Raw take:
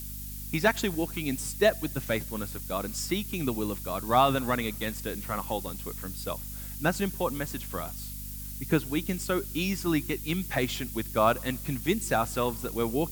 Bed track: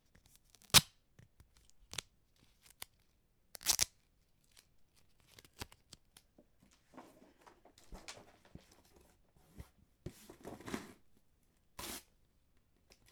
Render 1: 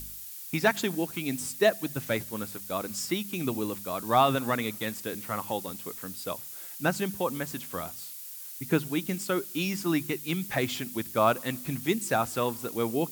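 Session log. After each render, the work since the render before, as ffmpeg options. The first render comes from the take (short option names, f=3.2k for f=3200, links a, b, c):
-af "bandreject=f=50:t=h:w=4,bandreject=f=100:t=h:w=4,bandreject=f=150:t=h:w=4,bandreject=f=200:t=h:w=4,bandreject=f=250:t=h:w=4"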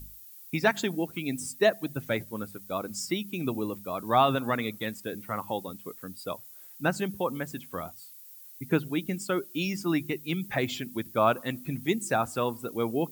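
-af "afftdn=nr=12:nf=-42"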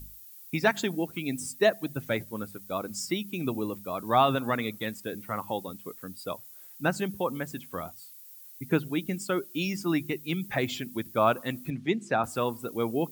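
-filter_complex "[0:a]asettb=1/sr,asplit=3[a][b][c];[a]atrim=end=11.704[d];[b]atrim=start=11.7:end=12.24,asetpts=PTS-STARTPTS,afade=t=in:d=0.004:c=qsin,afade=t=out:st=0.536:d=0.004:c=qsin,highpass=110,lowpass=4k[e];[c]atrim=start=12.236[f];[d][e]acrossfade=d=0.004:c1=hsin:c2=qsin[g];[g][f]acrossfade=d=0.004:c1=qsin:c2=hsin"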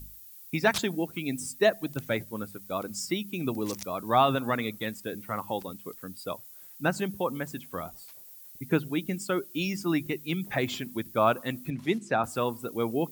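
-filter_complex "[1:a]volume=-9.5dB[a];[0:a][a]amix=inputs=2:normalize=0"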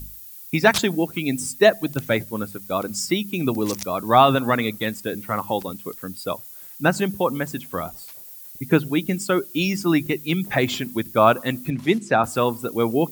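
-af "volume=8dB"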